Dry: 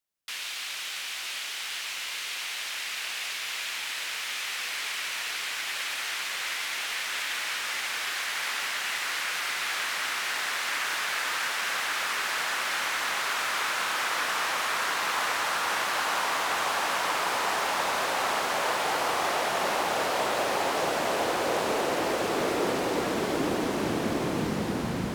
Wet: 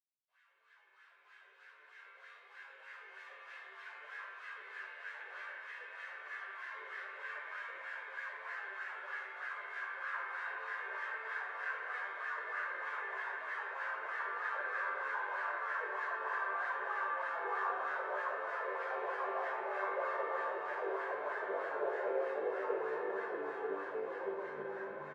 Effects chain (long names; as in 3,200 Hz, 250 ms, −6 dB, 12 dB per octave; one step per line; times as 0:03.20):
fade in at the beginning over 3.63 s
comb filter 1.9 ms, depth 42%
reversed playback
upward compression, threshold −46 dBFS
reversed playback
LFO wah 3.2 Hz 380–1,800 Hz, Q 13
on a send: flutter between parallel walls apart 3.5 metres, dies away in 0.42 s
on the sum: spring reverb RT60 3.4 s, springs 54 ms, chirp 60 ms, DRR −1.5 dB
string-ensemble chorus
level −2 dB